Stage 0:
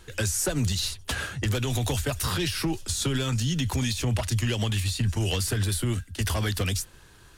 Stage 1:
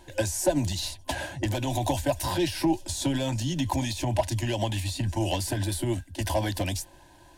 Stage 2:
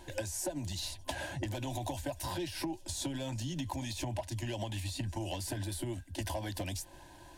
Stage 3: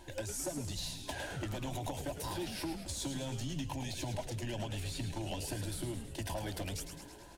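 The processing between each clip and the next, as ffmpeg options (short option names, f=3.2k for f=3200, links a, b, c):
-af "superequalizer=6b=2.82:7b=0.562:8b=3.98:9b=3.55:10b=0.316,volume=-3.5dB"
-af "acompressor=threshold=-35dB:ratio=6"
-filter_complex "[0:a]volume=30dB,asoftclip=hard,volume=-30dB,asplit=2[a][b];[b]asplit=8[c][d][e][f][g][h][i][j];[c]adelay=107,afreqshift=-130,volume=-8dB[k];[d]adelay=214,afreqshift=-260,volume=-12dB[l];[e]adelay=321,afreqshift=-390,volume=-16dB[m];[f]adelay=428,afreqshift=-520,volume=-20dB[n];[g]adelay=535,afreqshift=-650,volume=-24.1dB[o];[h]adelay=642,afreqshift=-780,volume=-28.1dB[p];[i]adelay=749,afreqshift=-910,volume=-32.1dB[q];[j]adelay=856,afreqshift=-1040,volume=-36.1dB[r];[k][l][m][n][o][p][q][r]amix=inputs=8:normalize=0[s];[a][s]amix=inputs=2:normalize=0,volume=-2dB"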